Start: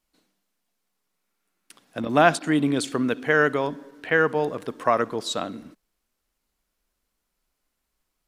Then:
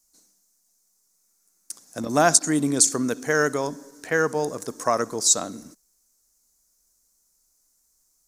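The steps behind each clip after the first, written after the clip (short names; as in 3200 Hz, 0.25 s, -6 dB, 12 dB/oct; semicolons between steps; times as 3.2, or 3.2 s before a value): resonant high shelf 4400 Hz +13.5 dB, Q 3; gain -1 dB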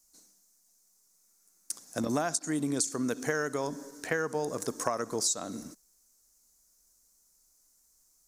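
compressor 16:1, threshold -26 dBFS, peak gain reduction 16 dB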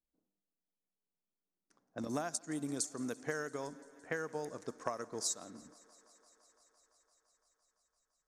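low-pass opened by the level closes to 590 Hz, open at -26.5 dBFS; thinning echo 0.17 s, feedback 85%, high-pass 190 Hz, level -19.5 dB; upward expander 1.5:1, over -39 dBFS; gain -6.5 dB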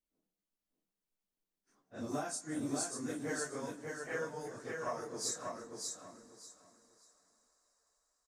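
phase scrambler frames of 0.1 s; on a send: feedback echo 0.59 s, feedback 23%, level -4 dB; on the sum: gain -1 dB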